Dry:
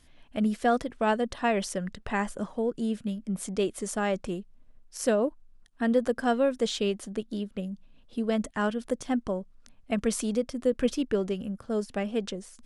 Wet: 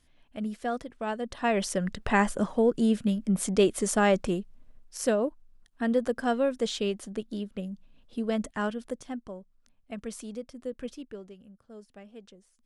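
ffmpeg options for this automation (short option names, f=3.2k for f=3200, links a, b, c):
-af "volume=5.5dB,afade=t=in:st=1.16:d=0.91:silence=0.237137,afade=t=out:st=4.09:d=1.1:silence=0.446684,afade=t=out:st=8.54:d=0.67:silence=0.354813,afade=t=out:st=10.73:d=0.62:silence=0.421697"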